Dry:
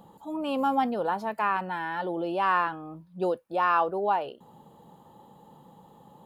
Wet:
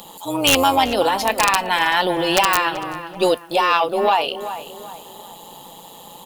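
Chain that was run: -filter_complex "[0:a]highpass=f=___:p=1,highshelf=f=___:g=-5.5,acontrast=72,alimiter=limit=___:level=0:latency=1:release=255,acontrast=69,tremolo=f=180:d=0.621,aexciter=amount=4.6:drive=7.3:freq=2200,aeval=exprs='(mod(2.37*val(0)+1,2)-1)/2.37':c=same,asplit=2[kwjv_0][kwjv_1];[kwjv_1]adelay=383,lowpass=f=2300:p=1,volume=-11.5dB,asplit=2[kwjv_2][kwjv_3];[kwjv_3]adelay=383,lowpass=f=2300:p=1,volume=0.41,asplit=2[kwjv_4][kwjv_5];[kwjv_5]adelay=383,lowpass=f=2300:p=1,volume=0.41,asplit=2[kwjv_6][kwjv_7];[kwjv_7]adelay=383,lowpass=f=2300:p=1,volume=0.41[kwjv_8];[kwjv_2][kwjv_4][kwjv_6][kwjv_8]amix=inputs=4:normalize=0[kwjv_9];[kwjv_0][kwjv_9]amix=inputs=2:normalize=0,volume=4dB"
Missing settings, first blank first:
550, 3100, -15.5dB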